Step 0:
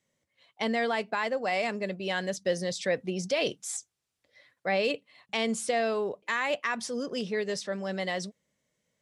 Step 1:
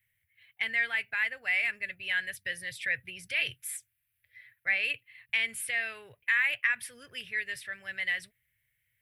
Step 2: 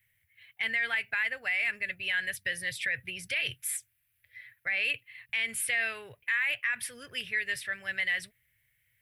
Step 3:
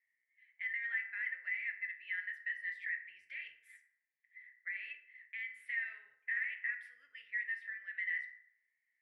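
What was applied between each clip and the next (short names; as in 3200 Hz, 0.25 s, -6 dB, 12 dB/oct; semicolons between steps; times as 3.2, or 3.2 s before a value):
EQ curve 120 Hz 0 dB, 190 Hz -30 dB, 480 Hz -28 dB, 1100 Hz -22 dB, 1700 Hz 0 dB, 2400 Hz +1 dB, 4300 Hz -16 dB, 6600 Hz -23 dB, 12000 Hz +8 dB; gain +6 dB
limiter -25 dBFS, peak gain reduction 10 dB; gain +4.5 dB
octaver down 1 oct, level -2 dB; band-pass 1900 Hz, Q 9.3; FDN reverb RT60 0.78 s, low-frequency decay 0.75×, high-frequency decay 0.5×, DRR 3.5 dB; gain -5 dB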